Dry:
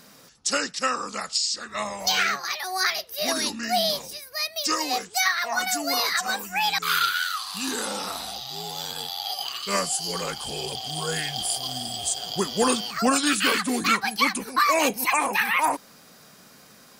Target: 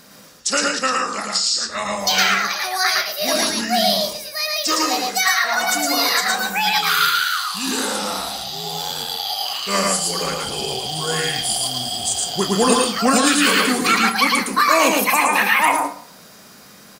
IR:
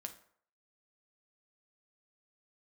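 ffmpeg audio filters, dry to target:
-filter_complex "[0:a]asplit=2[link_01][link_02];[link_02]adelay=31,volume=-12.5dB[link_03];[link_01][link_03]amix=inputs=2:normalize=0,asplit=2[link_04][link_05];[1:a]atrim=start_sample=2205,adelay=111[link_06];[link_05][link_06]afir=irnorm=-1:irlink=0,volume=2.5dB[link_07];[link_04][link_07]amix=inputs=2:normalize=0,volume=4dB"

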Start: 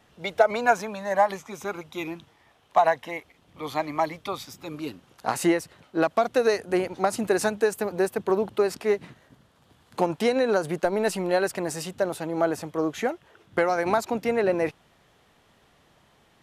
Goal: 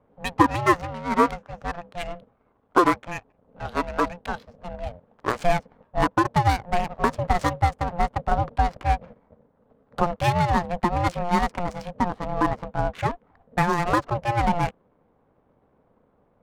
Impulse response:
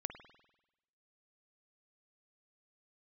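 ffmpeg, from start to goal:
-af "adynamicsmooth=sensitivity=6.5:basefreq=580,aeval=exprs='val(0)*sin(2*PI*350*n/s)':channel_layout=same,volume=4.5dB"

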